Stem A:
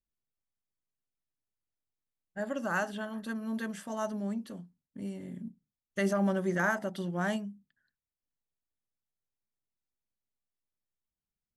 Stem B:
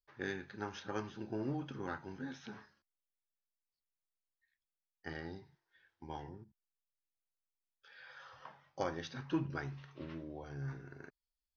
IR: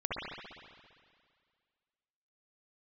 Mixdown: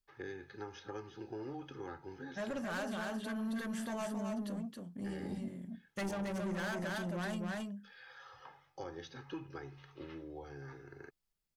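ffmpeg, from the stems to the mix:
-filter_complex "[0:a]asoftclip=type=tanh:threshold=-34dB,volume=0dB,asplit=2[link_01][link_02];[link_02]volume=-3dB[link_03];[1:a]aecho=1:1:2.4:0.62,acrossover=split=220|630[link_04][link_05][link_06];[link_04]acompressor=threshold=-53dB:ratio=4[link_07];[link_05]acompressor=threshold=-43dB:ratio=4[link_08];[link_06]acompressor=threshold=-49dB:ratio=4[link_09];[link_07][link_08][link_09]amix=inputs=3:normalize=0,volume=-1dB[link_10];[link_03]aecho=0:1:271:1[link_11];[link_01][link_10][link_11]amix=inputs=3:normalize=0,alimiter=level_in=8.5dB:limit=-24dB:level=0:latency=1:release=20,volume=-8.5dB"

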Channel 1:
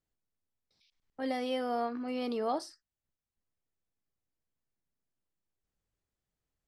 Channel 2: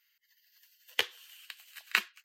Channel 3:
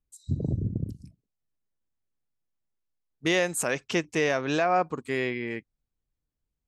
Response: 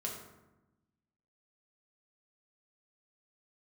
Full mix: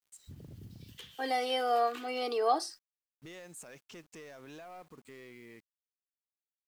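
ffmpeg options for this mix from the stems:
-filter_complex "[0:a]highpass=420,aecho=1:1:2.6:0.82,volume=2.5dB[link_01];[1:a]equalizer=frequency=3300:width_type=o:width=0.38:gain=7.5,alimiter=limit=-8dB:level=0:latency=1:release=107,volume=-6.5dB[link_02];[2:a]acompressor=threshold=-48dB:ratio=1.5,volume=-6dB[link_03];[link_02][link_03]amix=inputs=2:normalize=0,asoftclip=type=tanh:threshold=-35dB,alimiter=level_in=18.5dB:limit=-24dB:level=0:latency=1:release=96,volume=-18.5dB,volume=0dB[link_04];[link_01][link_04]amix=inputs=2:normalize=0,equalizer=frequency=7200:width=0.7:gain=3,acrusher=bits=10:mix=0:aa=0.000001"

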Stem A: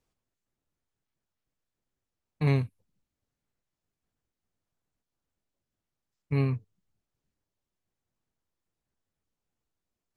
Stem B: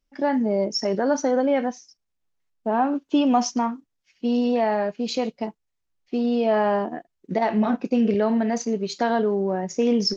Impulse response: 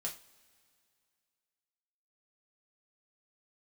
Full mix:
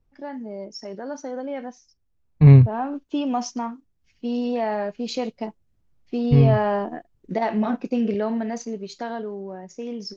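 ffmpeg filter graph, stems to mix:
-filter_complex "[0:a]aemphasis=mode=reproduction:type=riaa,volume=-0.5dB[link_01];[1:a]volume=-12dB,asplit=2[link_02][link_03];[link_03]apad=whole_len=448447[link_04];[link_01][link_04]sidechaincompress=threshold=-42dB:ratio=3:attack=5.3:release=933[link_05];[link_05][link_02]amix=inputs=2:normalize=0,dynaudnorm=framelen=300:gausssize=13:maxgain=11.5dB"

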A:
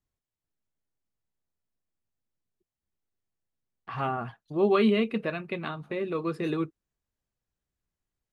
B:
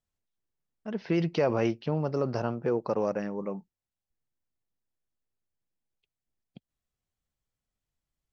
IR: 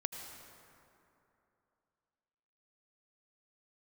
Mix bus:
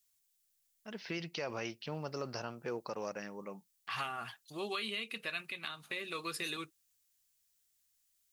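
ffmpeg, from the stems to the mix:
-filter_complex "[0:a]highshelf=frequency=4900:gain=11,acompressor=threshold=-28dB:ratio=2,tiltshelf=frequency=970:gain=-3,volume=-2.5dB[link_01];[1:a]volume=-4dB[link_02];[link_01][link_02]amix=inputs=2:normalize=0,tiltshelf=frequency=1400:gain=-9.5,alimiter=level_in=2.5dB:limit=-24dB:level=0:latency=1:release=264,volume=-2.5dB"

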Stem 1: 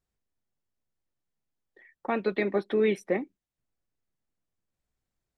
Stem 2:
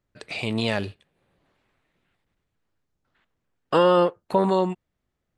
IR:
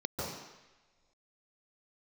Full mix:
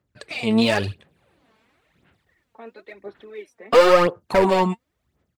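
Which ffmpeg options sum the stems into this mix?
-filter_complex "[0:a]highpass=340,adelay=500,volume=-13.5dB[link_01];[1:a]highpass=frequency=53:width=0.5412,highpass=frequency=53:width=1.3066,dynaudnorm=framelen=400:gausssize=3:maxgain=7.5dB,volume=-1.5dB[link_02];[link_01][link_02]amix=inputs=2:normalize=0,aeval=exprs='0.335*(abs(mod(val(0)/0.335+3,4)-2)-1)':channel_layout=same,aphaser=in_gain=1:out_gain=1:delay=4.6:decay=0.62:speed=0.96:type=sinusoidal"

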